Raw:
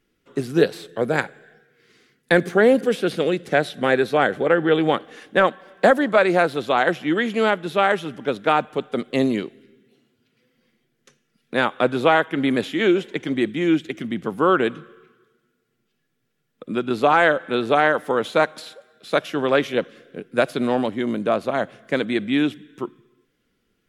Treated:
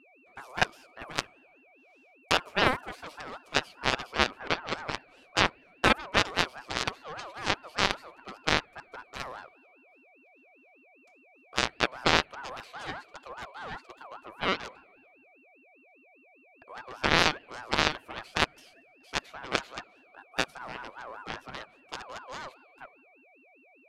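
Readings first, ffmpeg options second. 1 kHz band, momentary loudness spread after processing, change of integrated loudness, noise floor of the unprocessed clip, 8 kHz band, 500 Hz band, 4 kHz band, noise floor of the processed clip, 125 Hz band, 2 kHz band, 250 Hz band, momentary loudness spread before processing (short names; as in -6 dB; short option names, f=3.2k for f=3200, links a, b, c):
-9.5 dB, 18 LU, -9.0 dB, -71 dBFS, n/a, -17.0 dB, +0.5 dB, -60 dBFS, -9.5 dB, -7.0 dB, -17.0 dB, 10 LU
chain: -af "aeval=exprs='val(0)+0.01*sin(2*PI*1500*n/s)':c=same,aeval=exprs='0.668*(cos(1*acos(clip(val(0)/0.668,-1,1)))-cos(1*PI/2))+0.266*(cos(3*acos(clip(val(0)/0.668,-1,1)))-cos(3*PI/2))+0.0299*(cos(4*acos(clip(val(0)/0.668,-1,1)))-cos(4*PI/2))+0.0168*(cos(6*acos(clip(val(0)/0.668,-1,1)))-cos(6*PI/2))+0.00841*(cos(8*acos(clip(val(0)/0.668,-1,1)))-cos(8*PI/2))':c=same,aeval=exprs='val(0)*sin(2*PI*1000*n/s+1000*0.25/5*sin(2*PI*5*n/s))':c=same"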